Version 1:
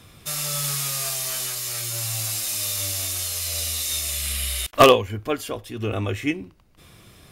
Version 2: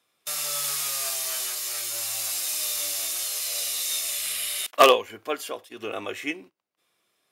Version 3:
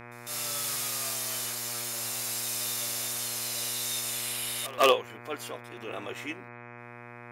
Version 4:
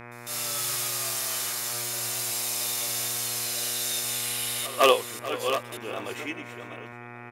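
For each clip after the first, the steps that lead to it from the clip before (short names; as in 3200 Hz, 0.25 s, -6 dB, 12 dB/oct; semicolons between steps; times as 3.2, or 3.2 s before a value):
gate -37 dBFS, range -18 dB; HPF 440 Hz 12 dB/oct; gain -1.5 dB
reverse echo 0.152 s -23.5 dB; buzz 120 Hz, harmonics 21, -41 dBFS -2 dB/oct; transient shaper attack -6 dB, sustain -2 dB; gain -4 dB
reverse delay 0.577 s, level -8.5 dB; echo 0.436 s -15.5 dB; gain +2.5 dB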